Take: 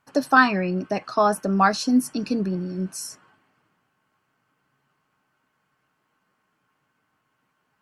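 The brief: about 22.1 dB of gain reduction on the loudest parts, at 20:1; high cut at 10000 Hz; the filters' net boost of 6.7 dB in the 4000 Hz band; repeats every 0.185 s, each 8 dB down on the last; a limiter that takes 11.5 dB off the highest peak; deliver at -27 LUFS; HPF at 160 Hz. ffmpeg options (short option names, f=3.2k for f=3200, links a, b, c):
-af "highpass=160,lowpass=10k,equalizer=f=4k:t=o:g=8,acompressor=threshold=-31dB:ratio=20,alimiter=level_in=6.5dB:limit=-24dB:level=0:latency=1,volume=-6.5dB,aecho=1:1:185|370|555|740|925:0.398|0.159|0.0637|0.0255|0.0102,volume=11.5dB"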